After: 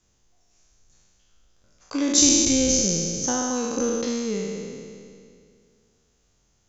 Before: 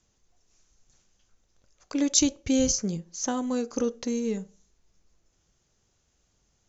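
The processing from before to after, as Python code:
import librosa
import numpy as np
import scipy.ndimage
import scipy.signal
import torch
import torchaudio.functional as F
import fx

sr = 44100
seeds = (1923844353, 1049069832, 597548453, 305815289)

y = fx.spec_trails(x, sr, decay_s=2.29)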